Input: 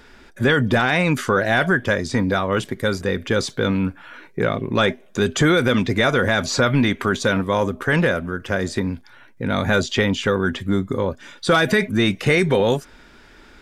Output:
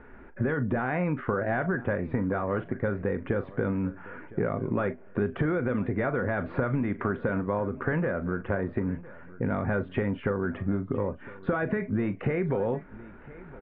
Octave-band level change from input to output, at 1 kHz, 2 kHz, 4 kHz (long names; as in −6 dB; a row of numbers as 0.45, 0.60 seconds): −10.5 dB, −13.5 dB, below −30 dB